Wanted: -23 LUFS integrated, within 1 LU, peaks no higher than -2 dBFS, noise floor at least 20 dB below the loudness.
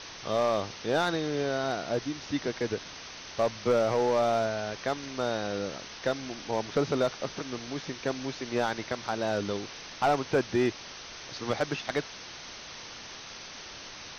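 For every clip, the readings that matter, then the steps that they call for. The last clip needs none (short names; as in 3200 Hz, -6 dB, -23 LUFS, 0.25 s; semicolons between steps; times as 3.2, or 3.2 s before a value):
clipped 0.5%; flat tops at -18.5 dBFS; noise floor -44 dBFS; noise floor target -51 dBFS; loudness -30.5 LUFS; peak -18.5 dBFS; loudness target -23.0 LUFS
-> clip repair -18.5 dBFS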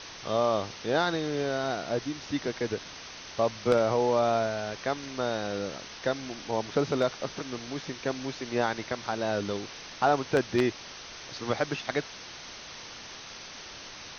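clipped 0.0%; noise floor -44 dBFS; noise floor target -50 dBFS
-> denoiser 6 dB, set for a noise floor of -44 dBFS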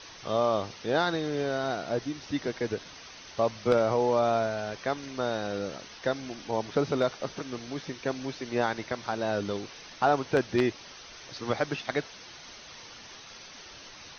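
noise floor -48 dBFS; noise floor target -50 dBFS
-> denoiser 6 dB, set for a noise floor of -48 dBFS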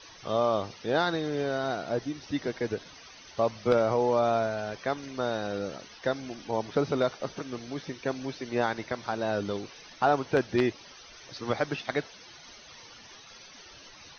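noise floor -51 dBFS; loudness -30.0 LUFS; peak -9.5 dBFS; loudness target -23.0 LUFS
-> gain +7 dB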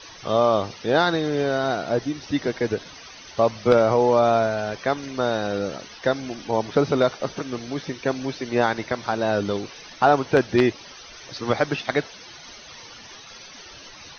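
loudness -23.0 LUFS; peak -2.5 dBFS; noise floor -44 dBFS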